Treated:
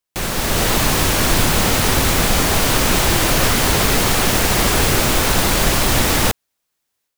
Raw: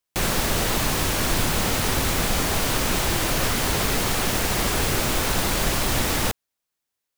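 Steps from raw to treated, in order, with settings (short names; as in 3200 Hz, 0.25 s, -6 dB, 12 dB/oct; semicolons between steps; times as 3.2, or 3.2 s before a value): AGC gain up to 9 dB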